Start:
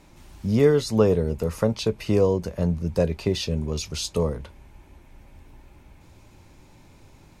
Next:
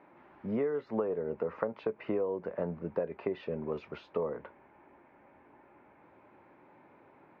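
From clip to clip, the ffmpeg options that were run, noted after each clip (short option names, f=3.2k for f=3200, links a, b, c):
-af "highpass=350,acompressor=threshold=-28dB:ratio=16,lowpass=f=1.9k:w=0.5412,lowpass=f=1.9k:w=1.3066"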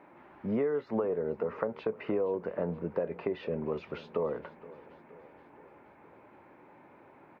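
-filter_complex "[0:a]asplit=2[a][b];[b]alimiter=level_in=3dB:limit=-24dB:level=0:latency=1:release=120,volume=-3dB,volume=-2dB[c];[a][c]amix=inputs=2:normalize=0,aecho=1:1:472|944|1416|1888|2360:0.112|0.0651|0.0377|0.0219|0.0127,volume=-2dB"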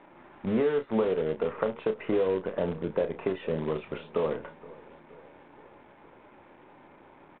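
-filter_complex "[0:a]asplit=2[a][b];[b]acrusher=bits=6:dc=4:mix=0:aa=0.000001,volume=-6.5dB[c];[a][c]amix=inputs=2:normalize=0,asplit=2[d][e];[e]adelay=32,volume=-9.5dB[f];[d][f]amix=inputs=2:normalize=0,aresample=8000,aresample=44100"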